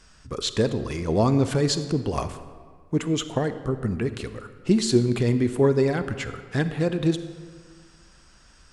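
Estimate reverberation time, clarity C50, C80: 1.7 s, 11.5 dB, 12.5 dB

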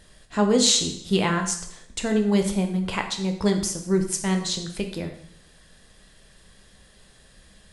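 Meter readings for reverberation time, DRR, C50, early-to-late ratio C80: 0.70 s, 3.5 dB, 8.5 dB, 11.0 dB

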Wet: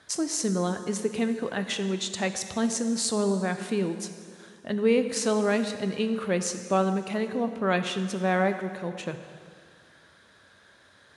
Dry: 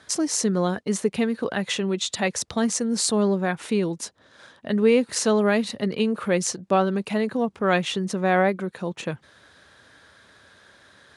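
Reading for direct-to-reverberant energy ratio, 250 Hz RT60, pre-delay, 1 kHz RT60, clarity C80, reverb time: 8.0 dB, 2.1 s, 5 ms, 2.1 s, 10.0 dB, 2.1 s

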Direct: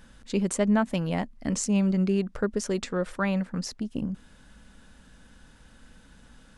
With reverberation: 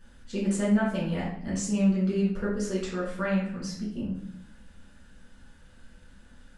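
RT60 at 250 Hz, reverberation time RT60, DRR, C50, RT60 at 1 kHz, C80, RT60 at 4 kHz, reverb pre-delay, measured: 0.95 s, 0.65 s, -8.0 dB, 3.0 dB, 0.60 s, 7.0 dB, 0.50 s, 5 ms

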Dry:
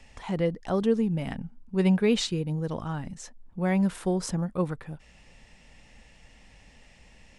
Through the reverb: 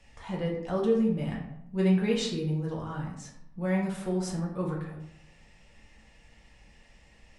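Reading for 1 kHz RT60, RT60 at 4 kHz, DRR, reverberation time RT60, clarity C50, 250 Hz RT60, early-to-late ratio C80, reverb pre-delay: 0.75 s, 0.50 s, -3.5 dB, 0.80 s, 4.5 dB, 0.85 s, 7.5 dB, 3 ms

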